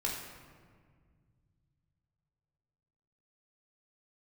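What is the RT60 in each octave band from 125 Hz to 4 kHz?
4.0, 2.9, 2.0, 1.7, 1.5, 1.0 seconds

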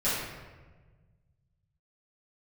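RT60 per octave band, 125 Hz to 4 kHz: 2.7, 1.9, 1.5, 1.2, 1.1, 0.85 seconds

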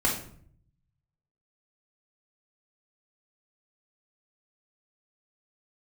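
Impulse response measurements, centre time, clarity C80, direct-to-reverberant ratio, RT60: 30 ms, 10.5 dB, −2.0 dB, 0.55 s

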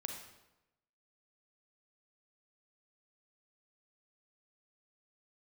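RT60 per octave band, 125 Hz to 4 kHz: 1.0, 0.95, 1.0, 0.95, 0.85, 0.75 seconds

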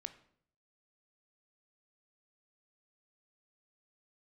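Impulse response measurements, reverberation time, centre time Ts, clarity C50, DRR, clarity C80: 0.60 s, 6 ms, 14.0 dB, 10.0 dB, 17.0 dB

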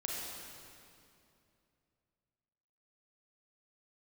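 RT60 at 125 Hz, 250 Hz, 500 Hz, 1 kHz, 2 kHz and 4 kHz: 3.4, 3.0, 2.8, 2.5, 2.3, 2.1 seconds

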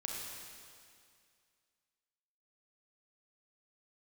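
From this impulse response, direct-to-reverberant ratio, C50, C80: −2.0 dB, −1.0 dB, 0.5 dB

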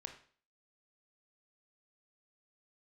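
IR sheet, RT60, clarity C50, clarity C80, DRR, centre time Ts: 0.45 s, 9.0 dB, 13.0 dB, 4.5 dB, 15 ms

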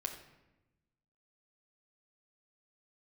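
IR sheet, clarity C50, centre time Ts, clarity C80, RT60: 7.5 dB, 21 ms, 10.0 dB, 1.0 s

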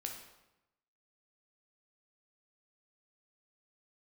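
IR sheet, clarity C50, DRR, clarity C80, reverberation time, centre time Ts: 5.5 dB, 1.5 dB, 8.0 dB, 0.95 s, 31 ms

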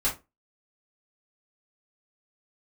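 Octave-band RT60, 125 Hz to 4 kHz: 0.25, 0.30, 0.25, 0.25, 0.20, 0.15 seconds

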